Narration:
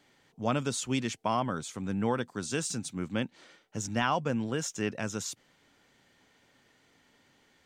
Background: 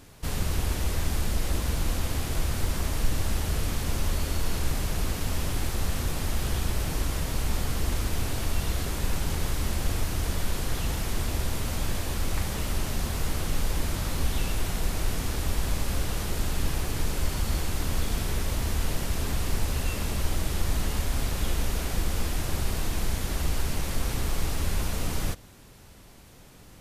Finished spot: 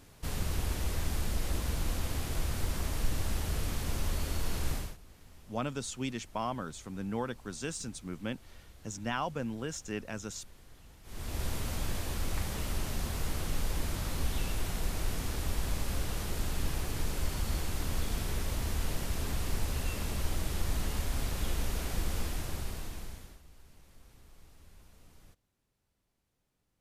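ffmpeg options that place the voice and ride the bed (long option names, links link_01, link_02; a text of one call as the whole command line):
ffmpeg -i stem1.wav -i stem2.wav -filter_complex "[0:a]adelay=5100,volume=-5.5dB[link_01];[1:a]volume=16dB,afade=type=out:start_time=4.73:duration=0.24:silence=0.0841395,afade=type=in:start_time=11.03:duration=0.42:silence=0.0841395,afade=type=out:start_time=22.16:duration=1.25:silence=0.0630957[link_02];[link_01][link_02]amix=inputs=2:normalize=0" out.wav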